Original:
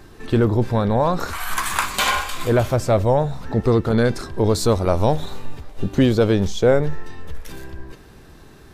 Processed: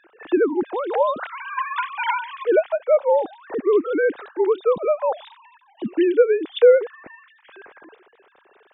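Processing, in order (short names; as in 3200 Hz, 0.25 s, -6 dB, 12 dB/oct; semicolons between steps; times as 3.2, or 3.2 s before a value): sine-wave speech; record warp 78 rpm, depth 100 cents; gain -2 dB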